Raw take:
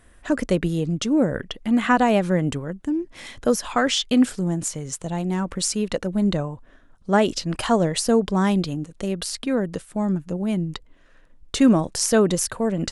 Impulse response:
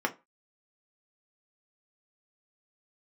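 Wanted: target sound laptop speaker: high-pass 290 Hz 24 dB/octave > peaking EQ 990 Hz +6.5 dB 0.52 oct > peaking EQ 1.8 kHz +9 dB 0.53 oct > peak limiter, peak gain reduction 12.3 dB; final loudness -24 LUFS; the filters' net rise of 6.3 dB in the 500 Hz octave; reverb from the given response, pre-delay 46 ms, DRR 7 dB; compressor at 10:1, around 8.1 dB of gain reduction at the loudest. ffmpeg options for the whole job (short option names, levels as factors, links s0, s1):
-filter_complex "[0:a]equalizer=f=500:t=o:g=7,acompressor=threshold=0.141:ratio=10,asplit=2[s0][s1];[1:a]atrim=start_sample=2205,adelay=46[s2];[s1][s2]afir=irnorm=-1:irlink=0,volume=0.158[s3];[s0][s3]amix=inputs=2:normalize=0,highpass=f=290:w=0.5412,highpass=f=290:w=1.3066,equalizer=f=990:t=o:w=0.52:g=6.5,equalizer=f=1800:t=o:w=0.53:g=9,volume=1.41,alimiter=limit=0.2:level=0:latency=1"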